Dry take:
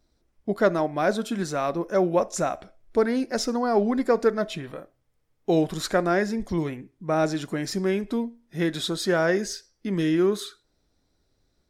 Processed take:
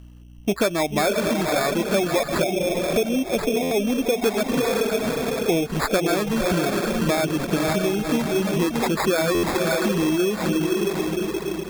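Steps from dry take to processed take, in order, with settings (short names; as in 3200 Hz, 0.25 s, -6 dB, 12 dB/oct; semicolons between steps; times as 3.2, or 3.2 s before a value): hum 60 Hz, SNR 28 dB; on a send: diffused feedback echo 0.572 s, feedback 41%, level -3 dB; on the sum: compressor 6:1, threshold -26 dBFS, peak gain reduction 12.5 dB; 2.43–4.24 band shelf 2200 Hz -15 dB 2.7 oct; in parallel at -8 dB: soft clip -32.5 dBFS, distortion -9 dB; on the sum: sample-and-hold 15×; reverb removal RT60 0.54 s; stuck buffer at 3.62/9.34, samples 512, times 7; gain +7.5 dB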